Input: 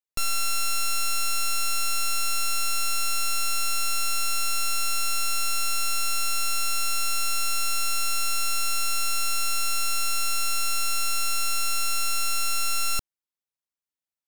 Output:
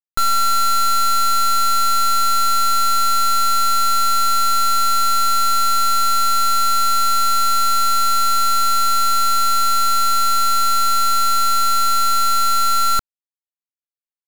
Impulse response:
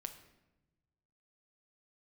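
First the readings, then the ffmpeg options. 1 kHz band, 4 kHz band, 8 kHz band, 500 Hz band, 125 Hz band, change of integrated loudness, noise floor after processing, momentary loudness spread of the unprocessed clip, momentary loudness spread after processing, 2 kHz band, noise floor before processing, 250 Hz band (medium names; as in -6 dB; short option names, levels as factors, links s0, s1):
+18.0 dB, +6.5 dB, +3.5 dB, +8.0 dB, no reading, +9.0 dB, under -85 dBFS, 0 LU, 0 LU, -1.0 dB, under -85 dBFS, +10.5 dB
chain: -af "lowpass=1400,acrusher=bits=3:mix=0:aa=0.000001,volume=1.88"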